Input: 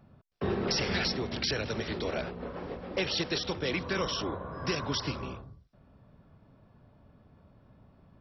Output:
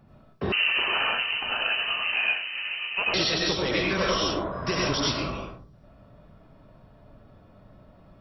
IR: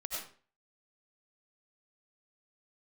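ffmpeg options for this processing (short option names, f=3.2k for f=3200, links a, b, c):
-filter_complex "[0:a]acontrast=59[a];[1:a]atrim=start_sample=2205,afade=t=out:st=0.28:d=0.01,atrim=end_sample=12789[b];[a][b]afir=irnorm=-1:irlink=0,asettb=1/sr,asplit=3[c][d][e];[c]atrim=end=0.524[f];[d]atrim=start=0.52:end=3.14,asetpts=PTS-STARTPTS,afade=t=in:d=0.004:c=qsin,afade=t=out:st=2.616:d=0.004:c=qsin,lowpass=f=2.6k:t=q:w=0.5098,lowpass=f=2.6k:t=q:w=0.6013,lowpass=f=2.6k:t=q:w=0.9,lowpass=f=2.6k:t=q:w=2.563,afreqshift=-3100[g];[e]atrim=start=3.136[h];[f][g]acrossfade=d=0.004:c1=hsin:c2=qsin[i];[i][h]acrossfade=d=0.004:c1=qsin:c2=hsin"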